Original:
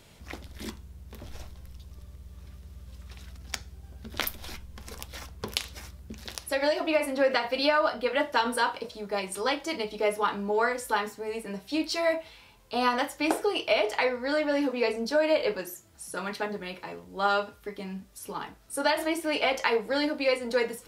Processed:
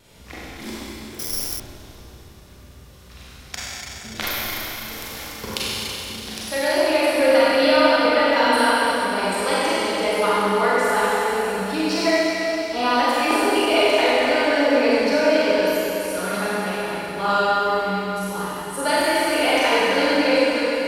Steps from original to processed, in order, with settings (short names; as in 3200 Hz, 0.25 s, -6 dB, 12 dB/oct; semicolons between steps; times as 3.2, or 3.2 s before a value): ending faded out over 0.66 s; vibrato 1.7 Hz 17 cents; Schroeder reverb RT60 3.7 s, combs from 32 ms, DRR -9 dB; 1.19–1.6 careless resampling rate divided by 8×, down none, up zero stuff